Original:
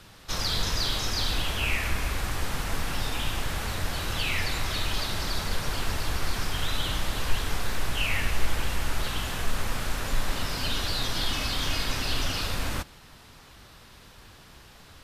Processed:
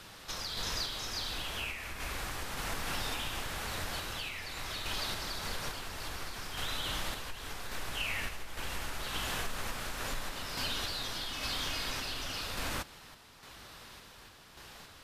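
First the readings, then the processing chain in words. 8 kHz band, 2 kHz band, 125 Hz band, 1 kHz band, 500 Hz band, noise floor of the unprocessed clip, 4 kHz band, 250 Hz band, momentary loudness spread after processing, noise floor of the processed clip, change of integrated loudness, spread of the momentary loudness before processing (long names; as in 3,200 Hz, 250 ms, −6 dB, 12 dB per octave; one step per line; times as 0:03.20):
−6.0 dB, −6.5 dB, −12.5 dB, −6.0 dB, −7.0 dB, −51 dBFS, −6.5 dB, −9.5 dB, 15 LU, −54 dBFS, −7.0 dB, 5 LU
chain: low-shelf EQ 230 Hz −8 dB
downward compressor, threshold −33 dBFS, peak gain reduction 11 dB
sample-and-hold tremolo
level +2 dB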